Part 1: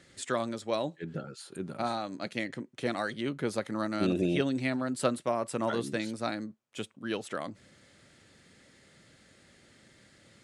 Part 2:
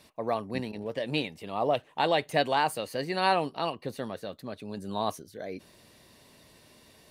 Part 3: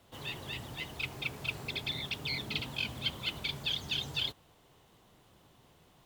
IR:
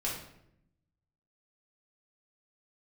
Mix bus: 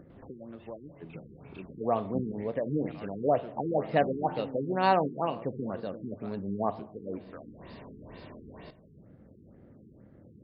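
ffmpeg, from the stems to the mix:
-filter_complex "[0:a]adynamicsmooth=sensitivity=7:basefreq=600,volume=-14dB,asplit=3[a][b][c];[b]volume=-16dB[d];[1:a]adelay=1600,volume=1dB,asplit=2[e][f];[f]volume=-14.5dB[g];[2:a]lowpass=2.9k,adelay=100,volume=-19.5dB,asplit=2[h][i];[i]volume=-5.5dB[j];[c]apad=whole_len=271327[k];[h][k]sidechaincompress=threshold=-49dB:ratio=8:attack=16:release=1340[l];[3:a]atrim=start_sample=2205[m];[d][g][j]amix=inputs=3:normalize=0[n];[n][m]afir=irnorm=-1:irlink=0[o];[a][e][l][o]amix=inputs=4:normalize=0,highshelf=f=2.1k:g=-11,acompressor=mode=upward:threshold=-35dB:ratio=2.5,afftfilt=real='re*lt(b*sr/1024,430*pow(5400/430,0.5+0.5*sin(2*PI*2.1*pts/sr)))':imag='im*lt(b*sr/1024,430*pow(5400/430,0.5+0.5*sin(2*PI*2.1*pts/sr)))':win_size=1024:overlap=0.75"

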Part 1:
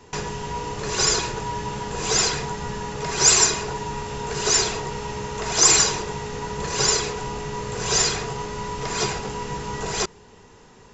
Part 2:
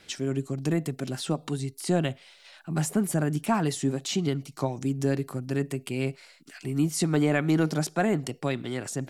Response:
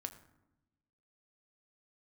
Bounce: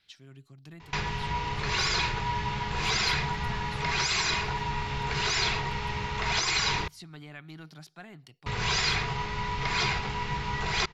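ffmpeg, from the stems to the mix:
-filter_complex "[0:a]equalizer=f=2.2k:t=o:w=0.27:g=8,alimiter=limit=-14dB:level=0:latency=1:release=21,highshelf=f=3.8k:g=-11,adelay=800,volume=1.5dB,asplit=3[a][b][c];[a]atrim=end=6.88,asetpts=PTS-STARTPTS,afade=t=out:st=6.876:d=0.004:c=hsin[d];[b]atrim=start=6.88:end=8.46,asetpts=PTS-STARTPTS,volume=0[e];[c]atrim=start=8.46,asetpts=PTS-STARTPTS,afade=t=in:d=0.004:c=hsin[f];[d][e][f]concat=n=3:v=0:a=1,asplit=2[g][h];[h]volume=-22.5dB[i];[1:a]volume=-16dB[j];[2:a]atrim=start_sample=2205[k];[i][k]afir=irnorm=-1:irlink=0[l];[g][j][l]amix=inputs=3:normalize=0,equalizer=f=250:t=o:w=1:g=-8,equalizer=f=500:t=o:w=1:g=-11,equalizer=f=4k:t=o:w=1:g=8,equalizer=f=8k:t=o:w=1:g=-11"

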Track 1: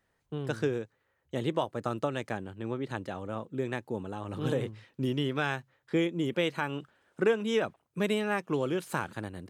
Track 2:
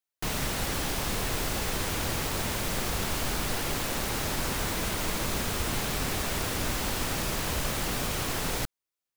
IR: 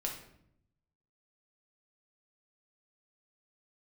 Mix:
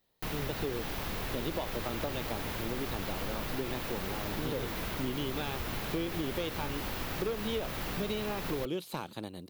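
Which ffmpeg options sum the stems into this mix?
-filter_complex "[0:a]equalizer=f=100:t=o:w=0.67:g=-7,equalizer=f=1.6k:t=o:w=0.67:g=-11,equalizer=f=4k:t=o:w=0.67:g=10,asoftclip=type=hard:threshold=-22.5dB,volume=-1dB[a];[1:a]volume=-5dB[b];[a][b]amix=inputs=2:normalize=0,acrossover=split=4700[c][d];[d]acompressor=threshold=-51dB:ratio=4:attack=1:release=60[e];[c][e]amix=inputs=2:normalize=0,aexciter=amount=2.4:drive=7.4:freq=11k,acompressor=threshold=-30dB:ratio=6"

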